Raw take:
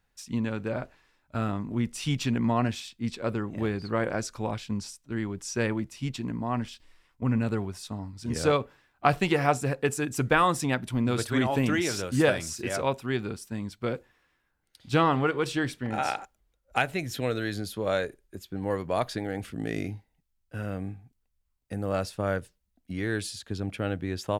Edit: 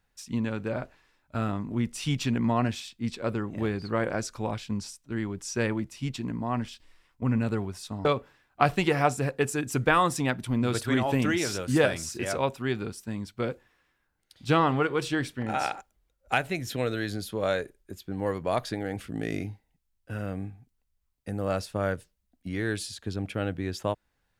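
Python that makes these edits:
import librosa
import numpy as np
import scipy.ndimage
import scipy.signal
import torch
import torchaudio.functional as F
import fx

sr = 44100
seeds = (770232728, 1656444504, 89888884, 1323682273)

y = fx.edit(x, sr, fx.cut(start_s=8.05, length_s=0.44), tone=tone)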